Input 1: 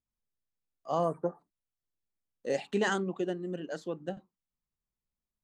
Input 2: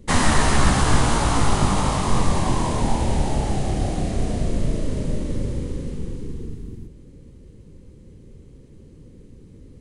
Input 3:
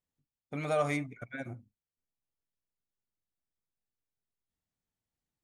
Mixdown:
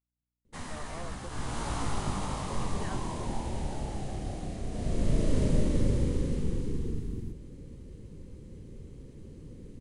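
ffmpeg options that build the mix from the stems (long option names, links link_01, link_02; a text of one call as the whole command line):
ffmpeg -i stem1.wav -i stem2.wav -i stem3.wav -filter_complex "[0:a]volume=-15.5dB[link_01];[1:a]adelay=450,volume=-1dB,afade=type=in:start_time=1.28:duration=0.43:silence=0.334965,afade=type=in:start_time=4.7:duration=0.69:silence=0.251189[link_02];[2:a]aeval=exprs='val(0)+0.000355*(sin(2*PI*60*n/s)+sin(2*PI*2*60*n/s)/2+sin(2*PI*3*60*n/s)/3+sin(2*PI*4*60*n/s)/4+sin(2*PI*5*60*n/s)/5)':channel_layout=same,volume=-19.5dB[link_03];[link_01][link_02][link_03]amix=inputs=3:normalize=0" out.wav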